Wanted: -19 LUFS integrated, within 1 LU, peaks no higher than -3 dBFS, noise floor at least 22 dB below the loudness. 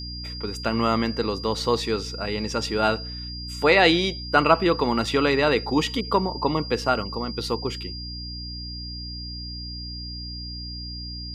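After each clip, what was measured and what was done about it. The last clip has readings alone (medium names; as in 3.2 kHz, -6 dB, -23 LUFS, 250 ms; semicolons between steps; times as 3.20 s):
hum 60 Hz; highest harmonic 300 Hz; hum level -34 dBFS; steady tone 4.8 kHz; tone level -35 dBFS; loudness -24.5 LUFS; peak level -4.5 dBFS; loudness target -19.0 LUFS
-> de-hum 60 Hz, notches 5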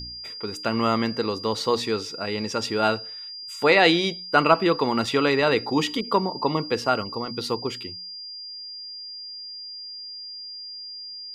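hum not found; steady tone 4.8 kHz; tone level -35 dBFS
-> band-stop 4.8 kHz, Q 30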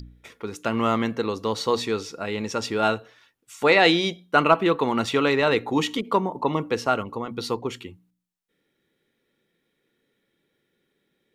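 steady tone not found; loudness -23.5 LUFS; peak level -5.0 dBFS; loudness target -19.0 LUFS
-> trim +4.5 dB; peak limiter -3 dBFS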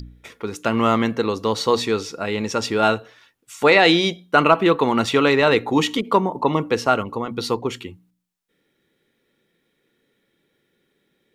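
loudness -19.5 LUFS; peak level -3.0 dBFS; noise floor -71 dBFS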